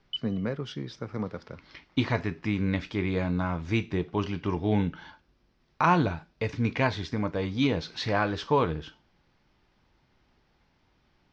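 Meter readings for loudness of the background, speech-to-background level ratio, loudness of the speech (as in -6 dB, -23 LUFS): -37.0 LUFS, 8.0 dB, -29.0 LUFS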